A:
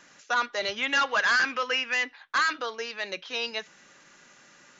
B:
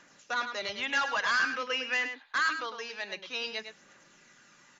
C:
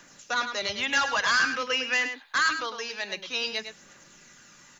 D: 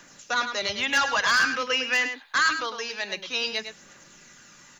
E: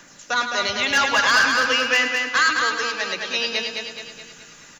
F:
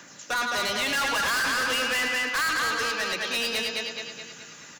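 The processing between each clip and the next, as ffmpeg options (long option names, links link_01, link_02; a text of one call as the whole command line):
ffmpeg -i in.wav -filter_complex "[0:a]aphaser=in_gain=1:out_gain=1:delay=1.3:decay=0.32:speed=0.51:type=triangular,asplit=2[link_01][link_02];[link_02]adelay=105,volume=-8dB,highshelf=frequency=4000:gain=-2.36[link_03];[link_01][link_03]amix=inputs=2:normalize=0,volume=-5dB" out.wav
ffmpeg -i in.wav -filter_complex "[0:a]lowshelf=frequency=110:gain=11.5,acrossover=split=180|2100[link_01][link_02][link_03];[link_03]crystalizer=i=1.5:c=0[link_04];[link_01][link_02][link_04]amix=inputs=3:normalize=0,volume=3.5dB" out.wav
ffmpeg -i in.wav -af "asoftclip=type=hard:threshold=-16dB,volume=2dB" out.wav
ffmpeg -i in.wav -af "aecho=1:1:212|424|636|848|1060|1272:0.596|0.298|0.149|0.0745|0.0372|0.0186,volume=3.5dB" out.wav
ffmpeg -i in.wav -af "highpass=91,asoftclip=type=hard:threshold=-24dB" out.wav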